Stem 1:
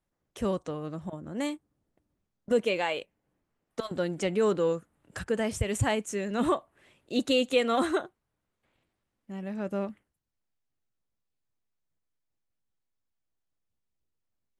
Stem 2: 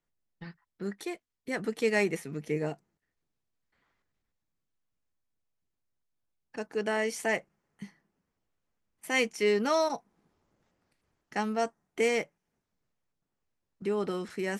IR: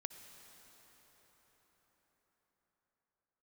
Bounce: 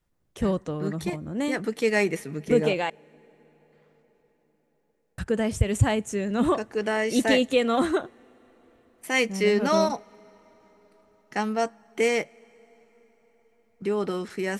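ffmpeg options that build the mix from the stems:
-filter_complex "[0:a]lowshelf=f=240:g=8,volume=0.5dB,asplit=3[a][b][c];[a]atrim=end=2.9,asetpts=PTS-STARTPTS,afade=t=out:st=2.896:d=0.004:c=hsin[d];[b]atrim=start=2.9:end=5.18,asetpts=PTS-STARTPTS,volume=0[e];[c]atrim=start=5.18,asetpts=PTS-STARTPTS,afade=t=in:d=0.004:c=hsin[f];[d][e][f]concat=n=3:v=0:a=1,asplit=2[g][h];[h]volume=-18.5dB[i];[1:a]volume=3dB,asplit=2[j][k];[k]volume=-15.5dB[l];[2:a]atrim=start_sample=2205[m];[i][l]amix=inputs=2:normalize=0[n];[n][m]afir=irnorm=-1:irlink=0[o];[g][j][o]amix=inputs=3:normalize=0"

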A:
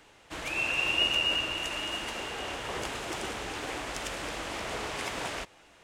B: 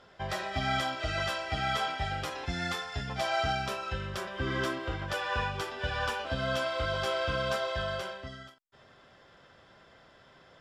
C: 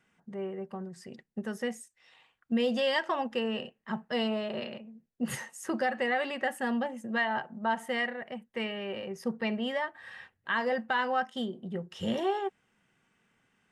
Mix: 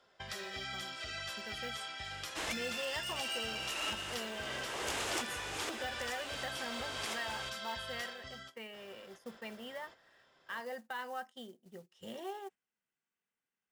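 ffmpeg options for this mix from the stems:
-filter_complex "[0:a]asoftclip=type=hard:threshold=-28dB,adelay=2050,volume=-0.5dB[a];[1:a]alimiter=level_in=1.5dB:limit=-24dB:level=0:latency=1:release=477,volume=-1.5dB,acrossover=split=160|590|1400[b][c][d][e];[b]acompressor=threshold=-44dB:ratio=4[f];[c]acompressor=threshold=-57dB:ratio=4[g];[d]acompressor=threshold=-59dB:ratio=4[h];[e]acompressor=threshold=-41dB:ratio=4[i];[f][g][h][i]amix=inputs=4:normalize=0,volume=-0.5dB[j];[2:a]acrusher=bits=6:mode=log:mix=0:aa=0.000001,volume=-12.5dB,asplit=2[k][l];[l]apad=whole_len=347743[m];[a][m]sidechaincompress=threshold=-52dB:ratio=6:attack=29:release=496[n];[n][j][k]amix=inputs=3:normalize=0,agate=range=-10dB:threshold=-51dB:ratio=16:detection=peak,bass=f=250:g=-8,treble=f=4k:g=5"

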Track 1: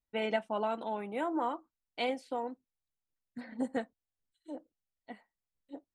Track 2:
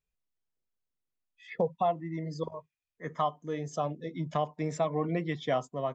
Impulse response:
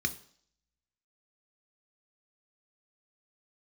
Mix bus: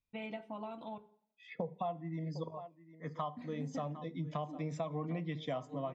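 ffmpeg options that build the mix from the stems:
-filter_complex "[0:a]acompressor=threshold=-35dB:ratio=6,volume=-4.5dB,asplit=3[a][b][c];[a]atrim=end=0.98,asetpts=PTS-STARTPTS,afade=t=out:st=0.976:d=0.004:c=hsin[d];[b]atrim=start=0.98:end=3.26,asetpts=PTS-STARTPTS,volume=0[e];[c]atrim=start=3.26,asetpts=PTS-STARTPTS,afade=t=in:d=0.004:c=hsin[f];[d][e][f]concat=n=3:v=0:a=1,asplit=2[g][h];[h]volume=-6.5dB[i];[1:a]highpass=140,volume=-4dB,asplit=4[j][k][l][m];[k]volume=-13dB[n];[l]volume=-17.5dB[o];[m]apad=whole_len=262257[p];[g][p]sidechaincompress=threshold=-41dB:ratio=8:attack=16:release=189[q];[2:a]atrim=start_sample=2205[r];[i][n]amix=inputs=2:normalize=0[s];[s][r]afir=irnorm=-1:irlink=0[t];[o]aecho=0:1:756:1[u];[q][j][t][u]amix=inputs=4:normalize=0,highshelf=f=6.2k:g=-9.5,acompressor=threshold=-35dB:ratio=3"

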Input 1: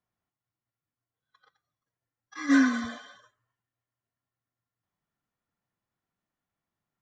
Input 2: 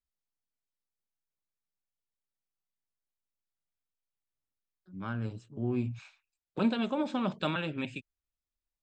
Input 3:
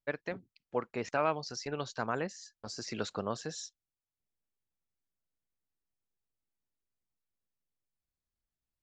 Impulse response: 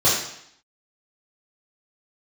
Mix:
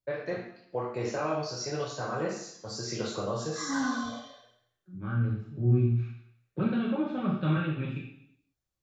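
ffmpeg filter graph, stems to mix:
-filter_complex "[0:a]asoftclip=type=tanh:threshold=-20dB,asplit=2[a][b];[b]afreqshift=-0.58[c];[a][c]amix=inputs=2:normalize=1,adelay=1200,volume=-3dB,asplit=2[d][e];[e]volume=-16dB[f];[1:a]lowpass=1.6k,equalizer=f=580:t=o:w=1.7:g=-13,bandreject=f=1k:w=5.3,volume=-0.5dB,asplit=2[g][h];[h]volume=-11.5dB[i];[2:a]alimiter=limit=-23dB:level=0:latency=1:release=100,flanger=delay=8.4:depth=1.5:regen=69:speed=0.32:shape=triangular,volume=-3.5dB,asplit=2[j][k];[k]volume=-8dB[l];[3:a]atrim=start_sample=2205[m];[f][i][l]amix=inputs=3:normalize=0[n];[n][m]afir=irnorm=-1:irlink=0[o];[d][g][j][o]amix=inputs=4:normalize=0"

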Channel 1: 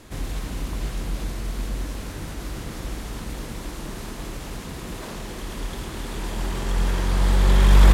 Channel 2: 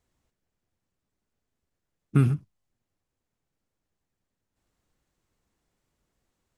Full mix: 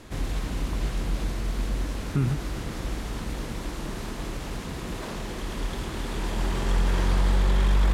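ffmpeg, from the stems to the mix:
-filter_complex "[0:a]volume=0.5dB[a];[1:a]volume=-2dB[b];[a][b]amix=inputs=2:normalize=0,highshelf=f=8.5k:g=-7.5,alimiter=limit=-13.5dB:level=0:latency=1:release=102"

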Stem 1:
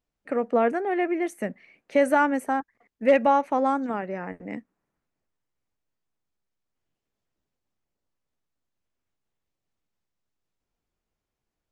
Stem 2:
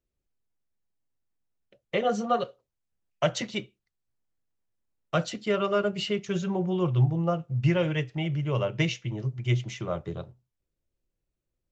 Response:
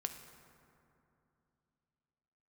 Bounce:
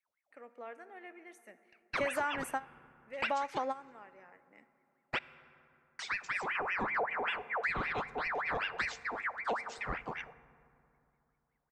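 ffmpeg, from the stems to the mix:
-filter_complex "[0:a]highpass=f=1.4k:p=1,adelay=50,volume=1dB,asplit=2[a][b];[b]volume=-22.5dB[c];[1:a]equalizer=f=2.6k:t=o:w=0.87:g=-6.5,aeval=exprs='val(0)*sin(2*PI*1400*n/s+1400*0.6/5.2*sin(2*PI*5.2*n/s))':c=same,volume=-6dB,asplit=3[d][e][f];[d]atrim=end=5.19,asetpts=PTS-STARTPTS,afade=t=out:st=5.186:d=0.004:c=hsin[g];[e]atrim=start=5.19:end=5.99,asetpts=PTS-STARTPTS,volume=0[h];[f]atrim=start=5.99,asetpts=PTS-STARTPTS,afade=t=in:d=0.004:c=hsin[i];[g][h][i]concat=n=3:v=0:a=1,asplit=3[j][k][l];[k]volume=-7.5dB[m];[l]apad=whole_len=518870[n];[a][n]sidechaingate=range=-24dB:threshold=-53dB:ratio=16:detection=peak[o];[2:a]atrim=start_sample=2205[p];[c][m]amix=inputs=2:normalize=0[q];[q][p]afir=irnorm=-1:irlink=0[r];[o][j][r]amix=inputs=3:normalize=0,acompressor=threshold=-30dB:ratio=6"

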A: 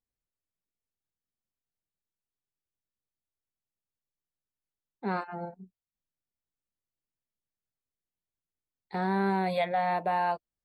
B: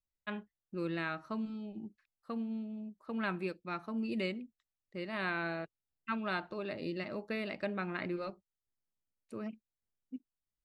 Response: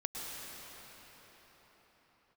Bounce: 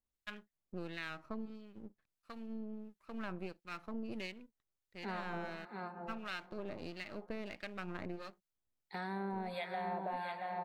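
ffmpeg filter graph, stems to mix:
-filter_complex "[0:a]volume=-3.5dB,asplit=3[a][b][c];[b]volume=-9dB[d];[c]volume=-5dB[e];[1:a]aeval=exprs='if(lt(val(0),0),0.251*val(0),val(0))':c=same,volume=1dB[f];[2:a]atrim=start_sample=2205[g];[d][g]afir=irnorm=-1:irlink=0[h];[e]aecho=0:1:675:1[i];[a][f][h][i]amix=inputs=4:normalize=0,acrossover=split=1300[j][k];[j]aeval=exprs='val(0)*(1-0.7/2+0.7/2*cos(2*PI*1.5*n/s))':c=same[l];[k]aeval=exprs='val(0)*(1-0.7/2-0.7/2*cos(2*PI*1.5*n/s))':c=same[m];[l][m]amix=inputs=2:normalize=0,acompressor=threshold=-37dB:ratio=5"

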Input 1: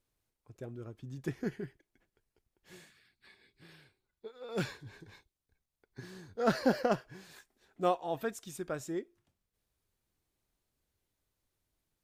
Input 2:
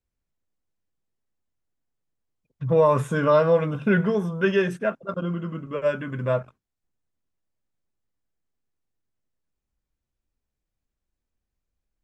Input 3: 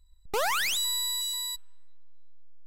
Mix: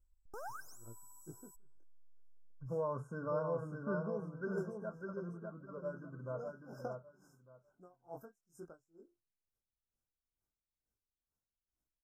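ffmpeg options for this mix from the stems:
-filter_complex "[0:a]flanger=delay=16:depth=7.7:speed=0.17,aeval=exprs='val(0)*pow(10,-33*(0.5-0.5*cos(2*PI*2.2*n/s))/20)':c=same,volume=-6dB[a];[1:a]highshelf=f=4.5k:g=-10,volume=-19dB,asplit=2[b][c];[c]volume=-4.5dB[d];[2:a]acrossover=split=3100[e][f];[f]acompressor=threshold=-38dB:ratio=4:attack=1:release=60[g];[e][g]amix=inputs=2:normalize=0,aphaser=in_gain=1:out_gain=1:delay=4.2:decay=0.39:speed=1.8:type=triangular,volume=-18dB[h];[d]aecho=0:1:601|1202|1803:1|0.19|0.0361[i];[a][b][h][i]amix=inputs=4:normalize=0,afftfilt=real='re*(1-between(b*sr/4096,1600,5000))':imag='im*(1-between(b*sr/4096,1600,5000))':win_size=4096:overlap=0.75"

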